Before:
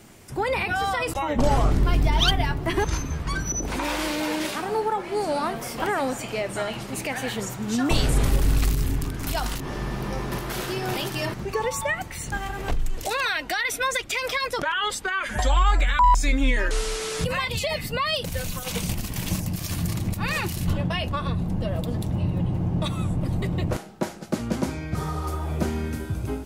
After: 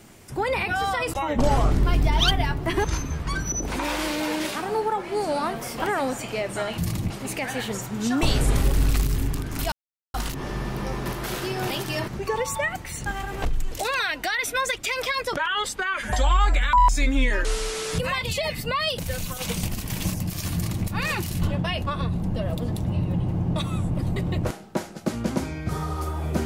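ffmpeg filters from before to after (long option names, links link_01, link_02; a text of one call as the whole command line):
ffmpeg -i in.wav -filter_complex "[0:a]asplit=4[link_01][link_02][link_03][link_04];[link_01]atrim=end=6.782[link_05];[link_02]atrim=start=19.798:end=20.122[link_06];[link_03]atrim=start=6.778:end=9.4,asetpts=PTS-STARTPTS,afade=type=out:start_time=2.618:duration=0.004:curve=hsin,apad=pad_dur=0.42[link_07];[link_04]atrim=start=9.4,asetpts=PTS-STARTPTS,afade=type=in:duration=0.004:curve=hsin[link_08];[link_05][link_06]acrossfade=duration=0.004:curve1=hsin:curve2=hsin[link_09];[link_07][link_08]concat=n=2:v=0:a=1[link_10];[link_09][link_10]acrossfade=duration=0.004:curve1=hsin:curve2=hsin" out.wav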